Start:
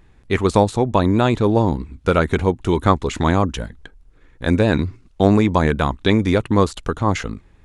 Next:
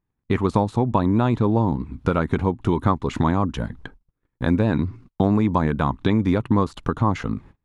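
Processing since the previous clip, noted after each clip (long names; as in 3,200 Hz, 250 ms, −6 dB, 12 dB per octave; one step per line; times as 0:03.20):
downward compressor 2.5 to 1, threshold −27 dBFS, peak gain reduction 12.5 dB
octave-band graphic EQ 125/250/1,000/8,000 Hz +8/+7/+8/−6 dB
noise gate −41 dBFS, range −32 dB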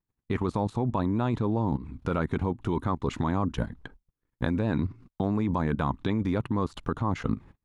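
output level in coarse steps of 13 dB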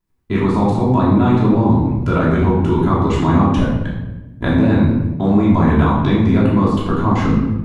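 rectangular room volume 510 cubic metres, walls mixed, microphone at 3 metres
level +4.5 dB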